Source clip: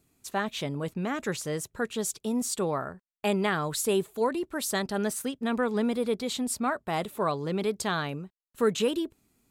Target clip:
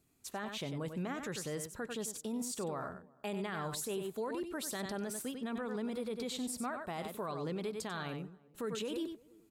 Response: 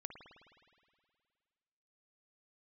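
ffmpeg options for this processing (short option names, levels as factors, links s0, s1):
-filter_complex "[0:a]asplit=2[s0][s1];[s1]aecho=0:1:94:0.316[s2];[s0][s2]amix=inputs=2:normalize=0,alimiter=level_in=1.19:limit=0.0631:level=0:latency=1:release=69,volume=0.841,asplit=2[s3][s4];[s4]adelay=344,lowpass=f=890:p=1,volume=0.0631,asplit=2[s5][s6];[s6]adelay=344,lowpass=f=890:p=1,volume=0.52,asplit=2[s7][s8];[s8]adelay=344,lowpass=f=890:p=1,volume=0.52[s9];[s5][s7][s9]amix=inputs=3:normalize=0[s10];[s3][s10]amix=inputs=2:normalize=0,volume=0.562"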